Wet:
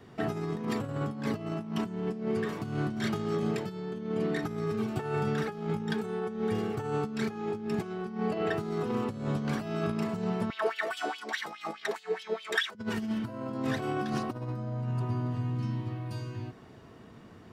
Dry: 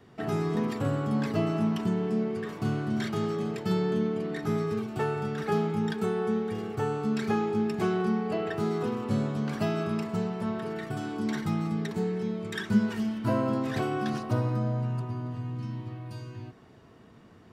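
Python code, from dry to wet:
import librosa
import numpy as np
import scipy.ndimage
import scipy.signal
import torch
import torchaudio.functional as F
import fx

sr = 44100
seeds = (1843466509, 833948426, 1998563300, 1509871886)

y = fx.over_compress(x, sr, threshold_db=-31.0, ratio=-0.5)
y = fx.filter_lfo_highpass(y, sr, shape='sine', hz=4.8, low_hz=480.0, high_hz=3400.0, q=3.7, at=(10.5, 12.75))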